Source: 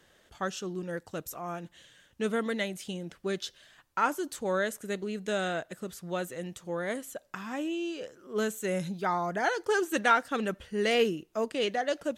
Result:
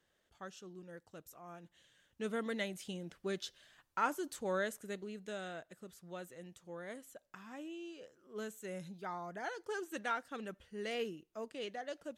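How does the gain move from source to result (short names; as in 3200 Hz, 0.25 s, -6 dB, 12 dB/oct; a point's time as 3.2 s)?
1.37 s -15.5 dB
2.59 s -6.5 dB
4.62 s -6.5 dB
5.4 s -13.5 dB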